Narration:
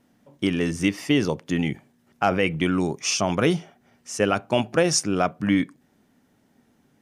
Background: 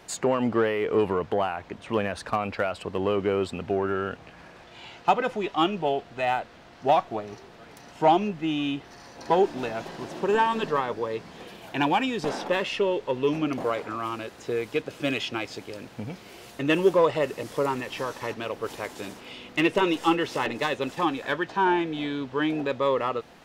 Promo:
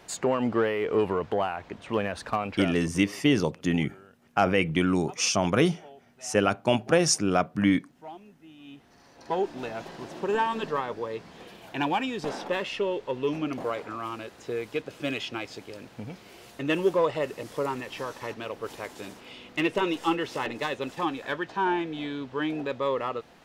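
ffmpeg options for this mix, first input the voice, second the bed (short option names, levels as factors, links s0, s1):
-filter_complex "[0:a]adelay=2150,volume=0.841[s0];[1:a]volume=8.41,afade=t=out:st=2.39:d=0.6:silence=0.0794328,afade=t=in:st=8.58:d=1.18:silence=0.1[s1];[s0][s1]amix=inputs=2:normalize=0"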